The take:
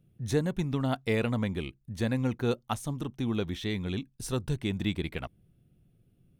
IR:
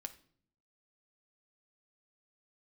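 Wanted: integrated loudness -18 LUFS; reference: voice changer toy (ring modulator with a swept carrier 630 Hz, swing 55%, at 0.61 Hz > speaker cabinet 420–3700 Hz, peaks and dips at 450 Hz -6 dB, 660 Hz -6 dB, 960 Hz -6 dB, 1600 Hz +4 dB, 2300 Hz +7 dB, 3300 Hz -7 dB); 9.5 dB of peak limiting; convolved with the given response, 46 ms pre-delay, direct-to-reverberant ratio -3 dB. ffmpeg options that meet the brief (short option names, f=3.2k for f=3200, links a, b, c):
-filter_complex "[0:a]alimiter=limit=-24dB:level=0:latency=1,asplit=2[a][b];[1:a]atrim=start_sample=2205,adelay=46[c];[b][c]afir=irnorm=-1:irlink=0,volume=6.5dB[d];[a][d]amix=inputs=2:normalize=0,aeval=exprs='val(0)*sin(2*PI*630*n/s+630*0.55/0.61*sin(2*PI*0.61*n/s))':c=same,highpass=420,equalizer=f=450:t=q:w=4:g=-6,equalizer=f=660:t=q:w=4:g=-6,equalizer=f=960:t=q:w=4:g=-6,equalizer=f=1.6k:t=q:w=4:g=4,equalizer=f=2.3k:t=q:w=4:g=7,equalizer=f=3.3k:t=q:w=4:g=-7,lowpass=f=3.7k:w=0.5412,lowpass=f=3.7k:w=1.3066,volume=19dB"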